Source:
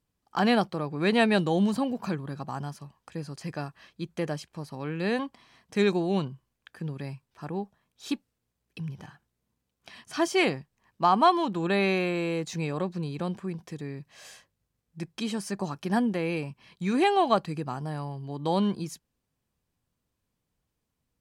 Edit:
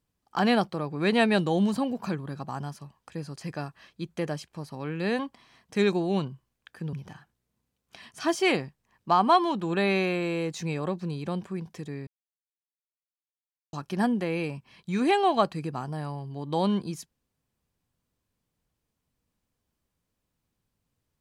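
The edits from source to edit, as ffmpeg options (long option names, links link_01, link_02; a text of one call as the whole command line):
ffmpeg -i in.wav -filter_complex "[0:a]asplit=4[link_01][link_02][link_03][link_04];[link_01]atrim=end=6.932[link_05];[link_02]atrim=start=8.858:end=14,asetpts=PTS-STARTPTS,afade=type=out:start_time=5.138:duration=0.004:curve=hsin[link_06];[link_03]atrim=start=14:end=15.66,asetpts=PTS-STARTPTS,volume=0[link_07];[link_04]atrim=start=15.66,asetpts=PTS-STARTPTS,afade=type=in:duration=0.004:curve=hsin[link_08];[link_06][link_07][link_08]concat=n=3:v=0:a=1[link_09];[link_05][link_09]acrossfade=duration=0.004:curve1=hsin:curve2=hsin" out.wav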